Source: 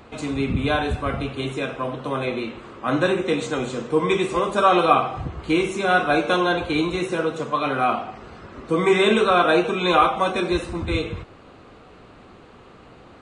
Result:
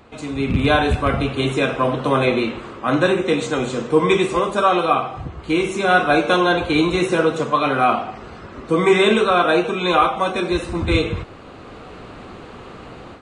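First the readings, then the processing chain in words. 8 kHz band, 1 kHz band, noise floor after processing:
+3.5 dB, +2.5 dB, -39 dBFS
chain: rattling part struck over -20 dBFS, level -25 dBFS; AGC; gain -2 dB

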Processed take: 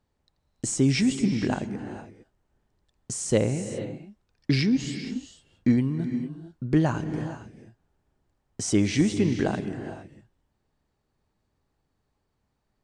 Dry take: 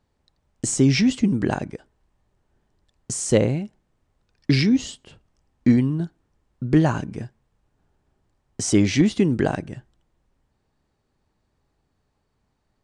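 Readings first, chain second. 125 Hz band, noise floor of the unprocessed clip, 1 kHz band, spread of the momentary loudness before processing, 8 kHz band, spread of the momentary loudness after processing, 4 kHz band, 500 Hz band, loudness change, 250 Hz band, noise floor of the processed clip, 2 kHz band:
-4.0 dB, -72 dBFS, -4.0 dB, 16 LU, -4.0 dB, 14 LU, -4.0 dB, -4.0 dB, -5.0 dB, -4.0 dB, -76 dBFS, -4.0 dB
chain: non-linear reverb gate 0.49 s rising, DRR 9 dB; gain -4.5 dB

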